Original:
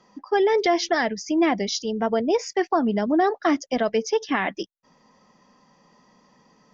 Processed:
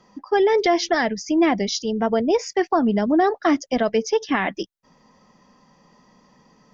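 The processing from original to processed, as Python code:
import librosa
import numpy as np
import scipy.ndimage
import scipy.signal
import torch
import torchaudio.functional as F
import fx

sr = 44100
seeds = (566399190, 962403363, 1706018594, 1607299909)

y = fx.low_shelf(x, sr, hz=130.0, db=7.5)
y = F.gain(torch.from_numpy(y), 1.5).numpy()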